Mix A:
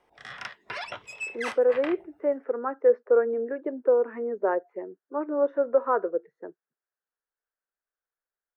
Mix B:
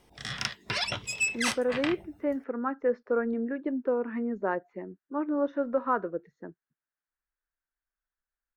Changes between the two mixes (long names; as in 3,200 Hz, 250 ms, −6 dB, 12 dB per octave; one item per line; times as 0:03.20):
speech: add parametric band 430 Hz −11.5 dB 1.2 octaves
master: remove three-way crossover with the lows and the highs turned down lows −16 dB, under 410 Hz, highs −15 dB, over 2,300 Hz